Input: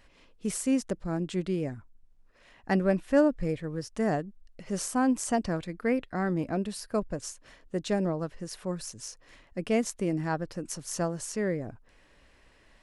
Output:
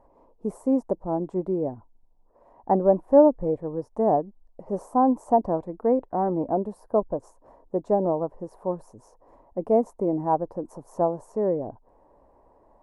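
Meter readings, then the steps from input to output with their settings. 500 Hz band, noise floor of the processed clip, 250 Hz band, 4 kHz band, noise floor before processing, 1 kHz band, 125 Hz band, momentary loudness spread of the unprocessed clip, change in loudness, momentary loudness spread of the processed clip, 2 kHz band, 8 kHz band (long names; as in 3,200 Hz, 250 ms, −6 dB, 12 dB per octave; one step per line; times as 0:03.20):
+8.0 dB, −60 dBFS, +2.5 dB, below −25 dB, −61 dBFS, +10.0 dB, −1.5 dB, 12 LU, +5.5 dB, 13 LU, below −15 dB, below −20 dB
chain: drawn EQ curve 170 Hz 0 dB, 260 Hz +5 dB, 450 Hz +9 dB, 940 Hz +14 dB, 1,400 Hz −10 dB, 3,000 Hz −29 dB, 11,000 Hz −15 dB
level −2 dB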